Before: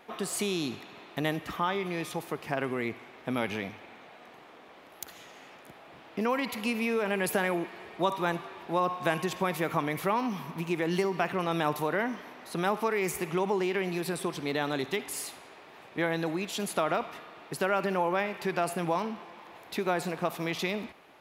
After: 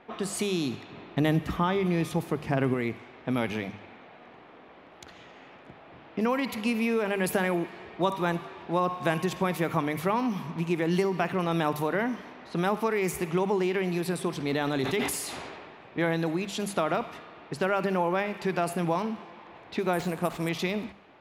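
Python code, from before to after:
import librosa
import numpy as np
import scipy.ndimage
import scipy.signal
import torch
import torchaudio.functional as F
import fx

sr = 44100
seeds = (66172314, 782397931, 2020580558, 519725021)

y = fx.low_shelf(x, sr, hz=340.0, db=7.5, at=(0.9, 2.74))
y = fx.sustainer(y, sr, db_per_s=28.0, at=(14.3, 16.14))
y = fx.resample_bad(y, sr, factor=4, down='none', up='hold', at=(19.93, 20.49))
y = fx.hum_notches(y, sr, base_hz=50, count=4)
y = fx.env_lowpass(y, sr, base_hz=2800.0, full_db=-28.5)
y = fx.low_shelf(y, sr, hz=230.0, db=8.5)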